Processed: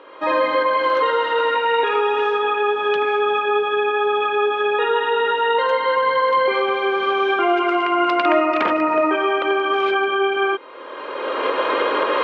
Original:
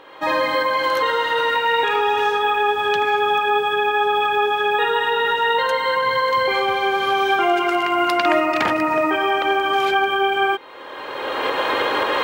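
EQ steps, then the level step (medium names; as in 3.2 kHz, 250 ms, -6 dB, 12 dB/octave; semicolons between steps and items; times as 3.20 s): band-pass 300–2300 Hz; peaking EQ 800 Hz -10 dB 0.31 oct; peaking EQ 1.8 kHz -6.5 dB 0.51 oct; +4.0 dB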